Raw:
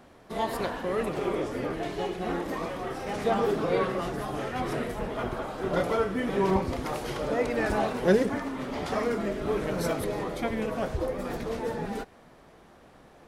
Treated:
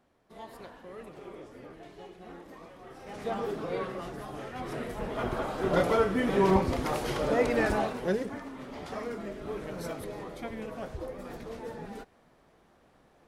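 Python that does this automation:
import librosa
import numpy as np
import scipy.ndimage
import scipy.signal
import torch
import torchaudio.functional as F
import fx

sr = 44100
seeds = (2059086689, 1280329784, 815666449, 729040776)

y = fx.gain(x, sr, db=fx.line((2.76, -16.0), (3.28, -7.5), (4.58, -7.5), (5.41, 1.5), (7.6, 1.5), (8.17, -8.5)))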